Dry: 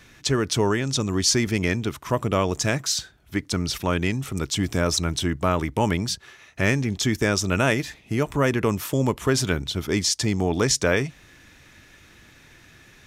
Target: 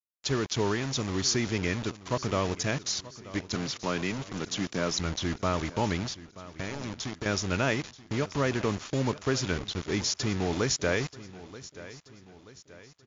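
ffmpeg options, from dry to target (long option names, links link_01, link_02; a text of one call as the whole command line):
ffmpeg -i in.wav -filter_complex "[0:a]asettb=1/sr,asplit=3[link_01][link_02][link_03];[link_01]atrim=end=3.554[link_04];[link_02]atrim=start=3.55:end=4.98,asetpts=PTS-STARTPTS,afade=type=in:duration=0.004:curve=qsin,afade=type=out:start_time=1.426:duration=0.004:curve=qsin,highpass=frequency=130:width=0.5412,highpass=frequency=130:width=1.3066[link_05];[link_03]atrim=start=4.976[link_06];[link_04][link_05]acrossfade=duration=0.004:curve1=hsin:curve2=qsin[link_07];[link_07][link_06]acrossfade=duration=0.004:curve1=qsin:curve2=hsin,asettb=1/sr,asplit=3[link_08][link_09][link_10];[link_08]atrim=end=6.074[link_11];[link_09]atrim=start=6.07:end=7.26,asetpts=PTS-STARTPTS,afade=type=in:duration=0.004:curve=qsin,afade=type=out:start_time=1.186:duration=0.004:curve=qsin,acompressor=threshold=-27dB:ratio=10[link_12];[link_10]atrim=start=7.256[link_13];[link_11][link_12]acrossfade=duration=0.004:curve1=hsin:curve2=qsin[link_14];[link_14][link_13]acrossfade=duration=0.004:curve1=qsin:curve2=hsin,acrusher=bits=4:mix=0:aa=0.000001,asplit=2[link_15][link_16];[link_16]aecho=0:1:931|1862|2793|3724:0.141|0.0664|0.0312|0.0147[link_17];[link_15][link_17]amix=inputs=2:normalize=0,volume=-6dB" -ar 16000 -c:a libmp3lame -b:a 80k out.mp3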